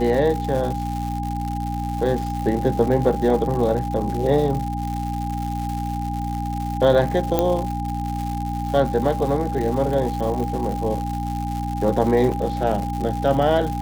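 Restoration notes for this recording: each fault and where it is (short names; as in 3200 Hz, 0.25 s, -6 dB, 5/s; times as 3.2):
crackle 240/s -27 dBFS
hum 60 Hz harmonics 5 -27 dBFS
tone 810 Hz -28 dBFS
7.39 pop -6 dBFS
12.32 gap 3.5 ms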